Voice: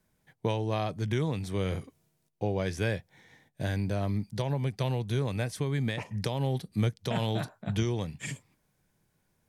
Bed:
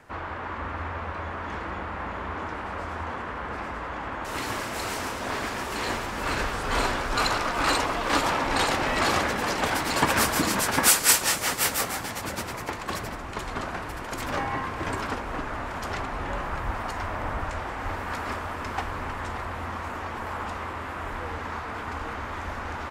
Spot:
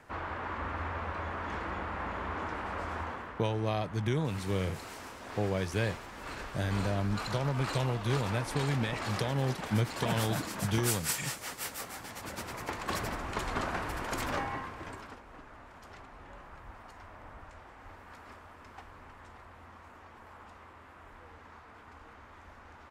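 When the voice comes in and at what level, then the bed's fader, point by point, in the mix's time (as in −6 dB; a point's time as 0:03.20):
2.95 s, −1.5 dB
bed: 0:02.99 −3.5 dB
0:03.51 −14 dB
0:11.79 −14 dB
0:13.04 −1.5 dB
0:14.17 −1.5 dB
0:15.21 −19 dB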